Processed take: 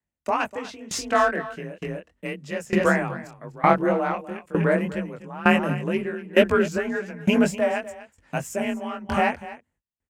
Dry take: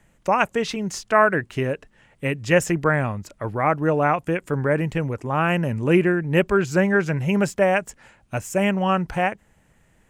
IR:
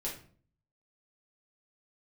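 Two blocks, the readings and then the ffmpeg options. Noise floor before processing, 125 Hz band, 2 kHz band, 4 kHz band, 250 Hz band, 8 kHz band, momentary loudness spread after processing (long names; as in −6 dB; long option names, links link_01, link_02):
−61 dBFS, −7.0 dB, −2.5 dB, 0.0 dB, −2.0 dB, −2.0 dB, 14 LU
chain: -af "acontrast=42,agate=range=-32dB:threshold=-43dB:ratio=16:detection=peak,flanger=delay=17.5:depth=7.8:speed=2,afreqshift=34,aecho=1:1:247:0.299,aeval=exprs='val(0)*pow(10,-20*if(lt(mod(1.1*n/s,1),2*abs(1.1)/1000),1-mod(1.1*n/s,1)/(2*abs(1.1)/1000),(mod(1.1*n/s,1)-2*abs(1.1)/1000)/(1-2*abs(1.1)/1000))/20)':channel_layout=same,volume=1.5dB"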